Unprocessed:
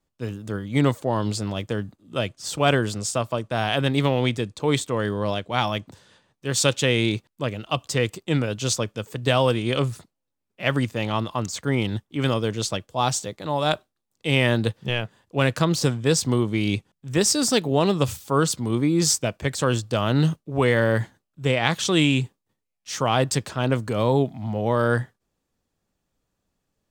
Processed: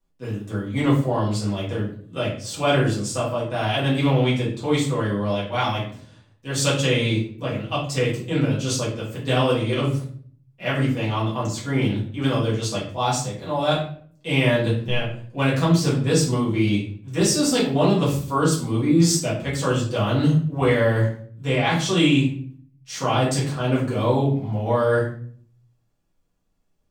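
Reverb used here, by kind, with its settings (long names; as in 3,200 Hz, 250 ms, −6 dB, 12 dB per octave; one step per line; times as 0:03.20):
rectangular room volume 59 cubic metres, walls mixed, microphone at 1.8 metres
level −9 dB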